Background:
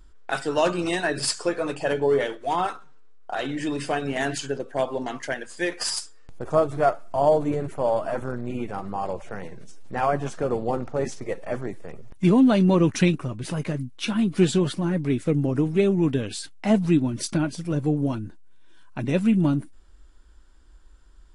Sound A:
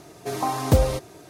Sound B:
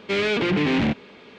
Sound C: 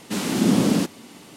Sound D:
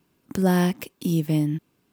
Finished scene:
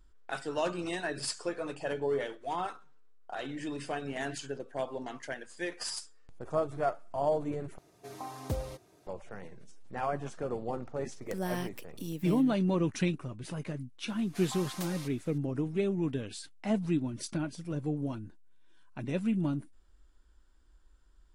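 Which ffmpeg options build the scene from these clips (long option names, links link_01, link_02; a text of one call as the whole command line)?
ffmpeg -i bed.wav -i cue0.wav -i cue1.wav -i cue2.wav -i cue3.wav -filter_complex "[1:a]asplit=2[link_01][link_02];[0:a]volume=-10dB[link_03];[4:a]lowshelf=frequency=240:gain=-9[link_04];[link_02]highpass=1400[link_05];[link_03]asplit=2[link_06][link_07];[link_06]atrim=end=7.784[link_08];[link_01]atrim=end=1.29,asetpts=PTS-STARTPTS,volume=-16.5dB[link_09];[link_07]atrim=start=9.066[link_10];[link_04]atrim=end=1.92,asetpts=PTS-STARTPTS,volume=-11dB,afade=type=in:duration=0.004:curve=hsin,afade=type=out:start_time=1.916:duration=0.004:curve=hsin,adelay=10960[link_11];[link_05]atrim=end=1.29,asetpts=PTS-STARTPTS,volume=-9.5dB,afade=type=in:duration=0.004:curve=hsin,afade=type=out:start_time=1.286:duration=0.004:curve=hsin,adelay=14090[link_12];[link_08][link_09]acrossfade=duration=0.004:curve1=hsin:curve2=hsin[link_13];[link_13][link_10]acrossfade=duration=0.004:curve1=hsin:curve2=hsin[link_14];[link_14][link_11][link_12]amix=inputs=3:normalize=0" out.wav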